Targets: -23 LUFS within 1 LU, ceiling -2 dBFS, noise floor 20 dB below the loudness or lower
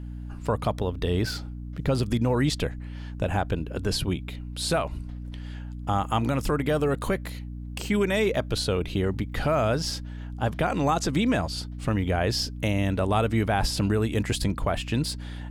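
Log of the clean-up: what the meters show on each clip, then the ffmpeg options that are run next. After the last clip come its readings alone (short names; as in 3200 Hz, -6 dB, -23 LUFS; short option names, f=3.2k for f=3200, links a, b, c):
hum 60 Hz; harmonics up to 300 Hz; hum level -33 dBFS; loudness -27.0 LUFS; peak -12.5 dBFS; loudness target -23.0 LUFS
-> -af "bandreject=f=60:t=h:w=4,bandreject=f=120:t=h:w=4,bandreject=f=180:t=h:w=4,bandreject=f=240:t=h:w=4,bandreject=f=300:t=h:w=4"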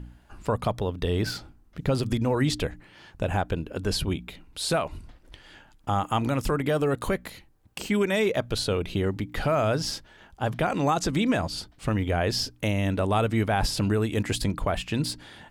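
hum none; loudness -27.0 LUFS; peak -13.0 dBFS; loudness target -23.0 LUFS
-> -af "volume=4dB"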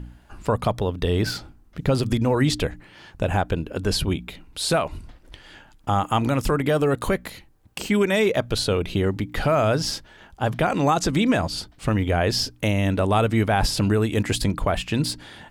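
loudness -23.0 LUFS; peak -9.0 dBFS; noise floor -53 dBFS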